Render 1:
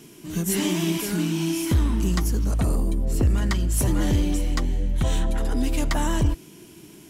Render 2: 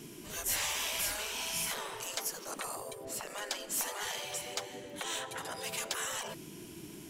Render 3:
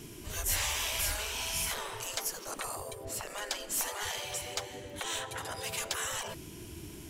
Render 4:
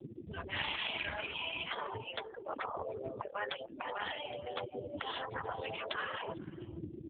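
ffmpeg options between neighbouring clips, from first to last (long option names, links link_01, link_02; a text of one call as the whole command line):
ffmpeg -i in.wav -af "afftfilt=real='re*lt(hypot(re,im),0.0794)':imag='im*lt(hypot(re,im),0.0794)':win_size=1024:overlap=0.75,volume=-1.5dB" out.wav
ffmpeg -i in.wav -af "lowshelf=frequency=120:width_type=q:width=1.5:gain=11,volume=1.5dB" out.wav
ffmpeg -i in.wav -af "afftfilt=real='re*gte(hypot(re,im),0.0224)':imag='im*gte(hypot(re,im),0.0224)':win_size=1024:overlap=0.75,aecho=1:1:447:0.0794,volume=5.5dB" -ar 8000 -c:a libopencore_amrnb -b:a 4750 out.amr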